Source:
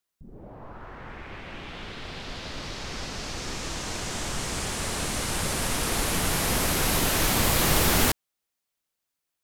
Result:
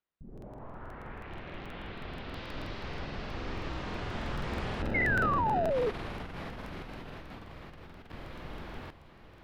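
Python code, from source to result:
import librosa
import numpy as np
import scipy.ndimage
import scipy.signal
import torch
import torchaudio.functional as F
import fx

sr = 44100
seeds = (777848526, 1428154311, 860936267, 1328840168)

y = fx.high_shelf(x, sr, hz=fx.line((2.32, 5700.0), (2.98, 9500.0)), db=10.0, at=(2.32, 2.98), fade=0.02)
y = fx.echo_feedback(y, sr, ms=739, feedback_pct=29, wet_db=-17.5)
y = fx.over_compress(y, sr, threshold_db=-29.0, ratio=-0.5)
y = fx.sample_hold(y, sr, seeds[0], rate_hz=1100.0, jitter_pct=0, at=(4.82, 5.71))
y = fx.air_absorb(y, sr, metres=360.0)
y = fx.spec_paint(y, sr, seeds[1], shape='fall', start_s=4.94, length_s=0.96, low_hz=410.0, high_hz=2200.0, level_db=-24.0)
y = fx.buffer_crackle(y, sr, first_s=0.33, period_s=0.16, block=2048, kind='repeat')
y = fx.doppler_dist(y, sr, depth_ms=0.58, at=(1.2, 1.66))
y = y * librosa.db_to_amplitude(-5.0)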